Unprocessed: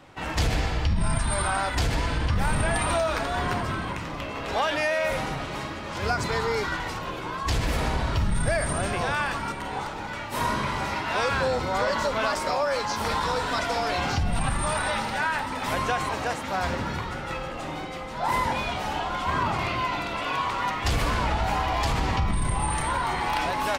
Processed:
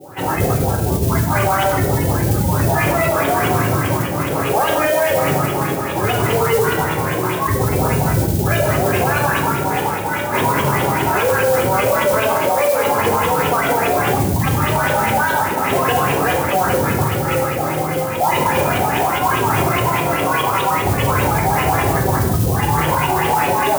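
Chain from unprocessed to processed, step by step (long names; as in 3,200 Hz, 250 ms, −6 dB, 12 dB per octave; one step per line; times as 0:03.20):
each half-wave held at its own peak
auto-filter low-pass saw up 4.9 Hz 450–3,500 Hz
gate on every frequency bin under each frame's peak −20 dB strong
high-pass filter 88 Hz 24 dB per octave
high-frequency loss of the air 200 metres
convolution reverb RT60 0.80 s, pre-delay 3 ms, DRR 0.5 dB
noise that follows the level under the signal 20 dB
high-shelf EQ 5,200 Hz +10 dB
boost into a limiter +9.5 dB
level −6 dB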